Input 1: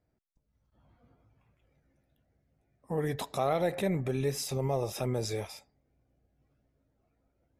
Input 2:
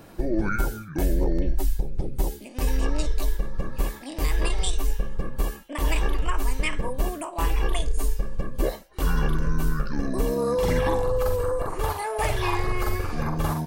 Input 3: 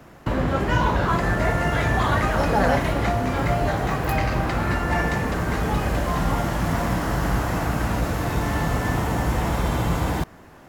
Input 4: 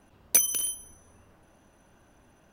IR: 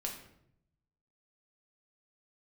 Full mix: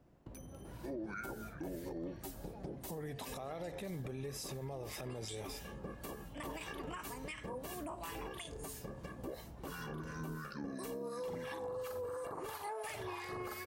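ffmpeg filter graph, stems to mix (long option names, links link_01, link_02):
-filter_complex "[0:a]volume=1.5dB[link_01];[1:a]highpass=160,acrossover=split=1300[link_02][link_03];[link_02]aeval=exprs='val(0)*(1-0.7/2+0.7/2*cos(2*PI*2.9*n/s))':channel_layout=same[link_04];[link_03]aeval=exprs='val(0)*(1-0.7/2-0.7/2*cos(2*PI*2.9*n/s))':channel_layout=same[link_05];[link_04][link_05]amix=inputs=2:normalize=0,adelay=650,volume=-4.5dB[link_06];[2:a]equalizer=frequency=1600:width=0.7:gain=-12,volume=-18dB[link_07];[3:a]volume=-19dB[link_08];[link_07][link_08]amix=inputs=2:normalize=0,highshelf=frequency=4200:gain=-11.5,acompressor=threshold=-50dB:ratio=4,volume=0dB[link_09];[link_01][link_06]amix=inputs=2:normalize=0,acompressor=threshold=-31dB:ratio=6,volume=0dB[link_10];[link_09][link_10]amix=inputs=2:normalize=0,alimiter=level_in=10.5dB:limit=-24dB:level=0:latency=1:release=154,volume=-10.5dB"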